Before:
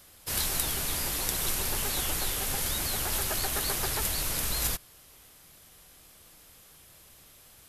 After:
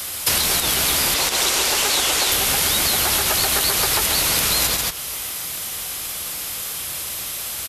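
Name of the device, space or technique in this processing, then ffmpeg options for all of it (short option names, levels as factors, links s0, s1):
mastering chain: -filter_complex "[0:a]asettb=1/sr,asplit=3[s0][s1][s2];[s0]atrim=end=1.144[s3];[s1]atrim=start=1.14:end=2.32,asetpts=PTS-STARTPTS,afade=t=in:d=0.004:c=qsin,afade=t=out:st=1.176:d=0.004:c=qsin,acrossover=split=270 7900:gain=0.178 1 0.224[s4][s5][s6];[s4][s5][s6]amix=inputs=3:normalize=0[s7];[s2]atrim=start=2.316[s8];[s3][s7]acrossfade=d=0.004:c1=hsin:c2=qsin[s9];[s9][s8]acrossfade=d=0.004:c1=qsin:c2=hsin,highpass=41,equalizer=f=1700:t=o:w=0.24:g=-3,aecho=1:1:138:0.355,acrossover=split=120|710|5800[s10][s11][s12][s13];[s10]acompressor=threshold=0.00398:ratio=4[s14];[s11]acompressor=threshold=0.00631:ratio=4[s15];[s12]acompressor=threshold=0.00708:ratio=4[s16];[s13]acompressor=threshold=0.00562:ratio=4[s17];[s14][s15][s16][s17]amix=inputs=4:normalize=0,acompressor=threshold=0.00631:ratio=2,tiltshelf=f=760:g=-5,alimiter=level_in=23.7:limit=0.891:release=50:level=0:latency=1,volume=0.531"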